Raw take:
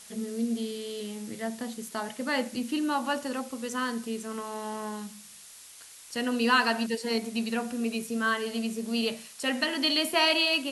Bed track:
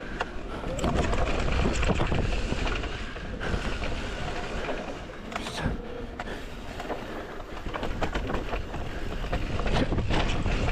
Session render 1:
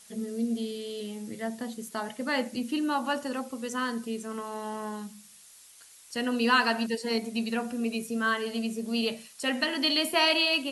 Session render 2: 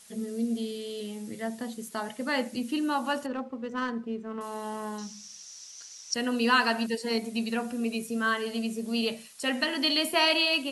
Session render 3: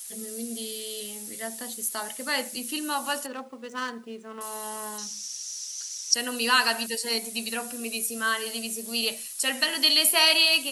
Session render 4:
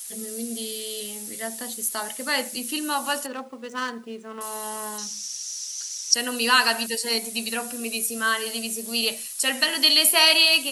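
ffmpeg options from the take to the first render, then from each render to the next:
-af "afftdn=nr=6:nf=-49"
-filter_complex "[0:a]asettb=1/sr,asplit=3[s0][s1][s2];[s0]atrim=end=3.264[s3];[s1]atrim=start=3.26:end=4.41,asetpts=PTS-STARTPTS,afade=t=in:d=0.004:c=qsin,afade=t=out:st=1.146:d=0.004:c=qsin,adynamicsmooth=sensitivity=2:basefreq=1600[s4];[s2]atrim=start=4.406[s5];[s3][s4]acrossfade=d=0.004:c1=hsin:c2=qsin[s6];[s6][s5]acrossfade=d=0.004:c1=qsin:c2=hsin,asettb=1/sr,asplit=3[s7][s8][s9];[s7]atrim=end=4.984[s10];[s8]atrim=start=4.98:end=6.14,asetpts=PTS-STARTPTS,afade=t=in:d=0.004:c=qsin,afade=t=out:st=1.156:d=0.004:c=qsin,lowpass=f=5800:t=q:w=8.9[s11];[s9]atrim=start=6.136[s12];[s10][s11]acrossfade=d=0.004:c1=hsin:c2=qsin[s13];[s13][s12]acrossfade=d=0.004:c1=qsin:c2=hsin"
-af "aemphasis=mode=production:type=riaa"
-af "volume=1.41"

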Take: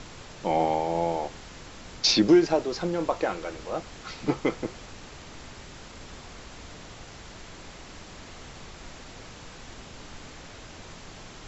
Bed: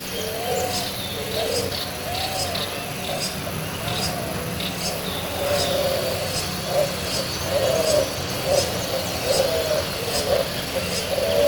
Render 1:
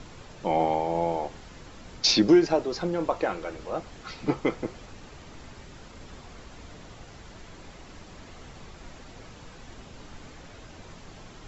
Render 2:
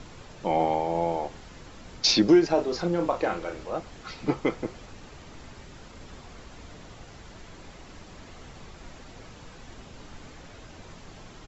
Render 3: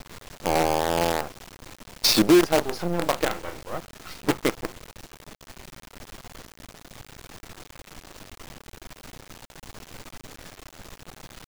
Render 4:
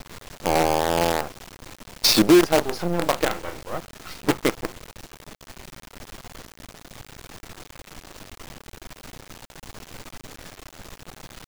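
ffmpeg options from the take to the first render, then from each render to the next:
-af "afftdn=nr=6:nf=-46"
-filter_complex "[0:a]asplit=3[s0][s1][s2];[s0]afade=t=out:st=2.56:d=0.02[s3];[s1]asplit=2[s4][s5];[s5]adelay=35,volume=0.501[s6];[s4][s6]amix=inputs=2:normalize=0,afade=t=in:st=2.56:d=0.02,afade=t=out:st=3.62:d=0.02[s7];[s2]afade=t=in:st=3.62:d=0.02[s8];[s3][s7][s8]amix=inputs=3:normalize=0"
-filter_complex "[0:a]asplit=2[s0][s1];[s1]asoftclip=type=tanh:threshold=0.112,volume=0.316[s2];[s0][s2]amix=inputs=2:normalize=0,acrusher=bits=4:dc=4:mix=0:aa=0.000001"
-af "volume=1.26"

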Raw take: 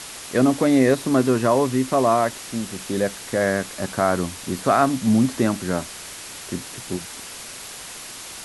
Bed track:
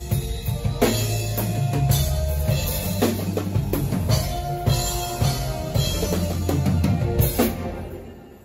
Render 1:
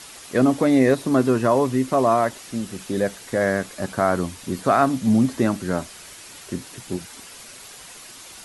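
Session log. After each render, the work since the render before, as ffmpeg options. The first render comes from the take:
-af "afftdn=nr=7:nf=-37"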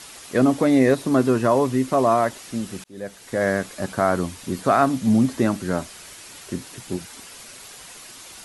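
-filter_complex "[0:a]asplit=2[s0][s1];[s0]atrim=end=2.84,asetpts=PTS-STARTPTS,afade=t=out:st=2.836:d=0.004:c=hsin[s2];[s1]atrim=start=2.84,asetpts=PTS-STARTPTS,afade=t=in:d=0.64[s3];[s2][s3]concat=n=2:v=0:a=1"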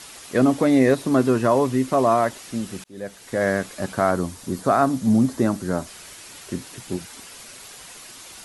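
-filter_complex "[0:a]asettb=1/sr,asplit=3[s0][s1][s2];[s0]atrim=end=4.114[s3];[s1]atrim=start=4.11:end=5.87,asetpts=PTS-STARTPTS,afade=t=in:d=0.004:c=qsin,afade=t=out:st=1.756:d=0.004:c=qsin,equalizer=f=2600:w=1.1:g=-6.5[s4];[s2]atrim=start=5.866[s5];[s3][s4]acrossfade=d=0.004:c1=hsin:c2=qsin[s6];[s6][s5]acrossfade=d=0.004:c1=qsin:c2=hsin"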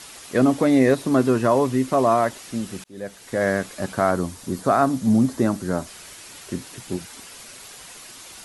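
-af anull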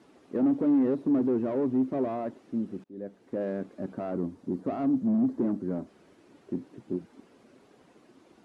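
-af "asoftclip=type=hard:threshold=0.106,bandpass=f=290:t=q:w=1.7:csg=0"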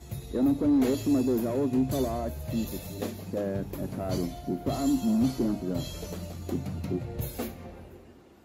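-filter_complex "[1:a]volume=0.188[s0];[0:a][s0]amix=inputs=2:normalize=0"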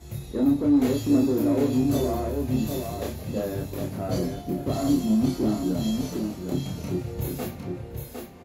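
-filter_complex "[0:a]asplit=2[s0][s1];[s1]adelay=28,volume=0.75[s2];[s0][s2]amix=inputs=2:normalize=0,aecho=1:1:757:0.562"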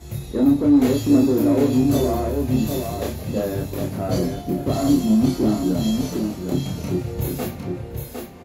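-af "volume=1.78"

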